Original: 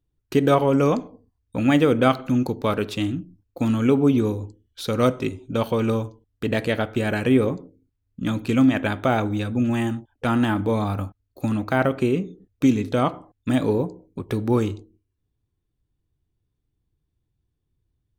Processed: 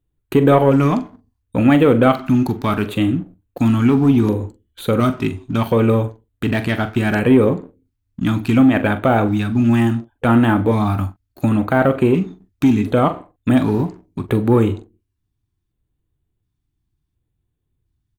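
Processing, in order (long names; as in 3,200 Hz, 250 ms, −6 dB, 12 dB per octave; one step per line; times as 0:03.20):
dynamic equaliser 5,800 Hz, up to −8 dB, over −48 dBFS, Q 0.8
in parallel at −2 dB: brickwall limiter −13 dBFS, peak gain reduction 9.5 dB
on the sum: leveller curve on the samples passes 1
auto-filter notch square 0.7 Hz 500–5,300 Hz
double-tracking delay 43 ms −12 dB
level −1 dB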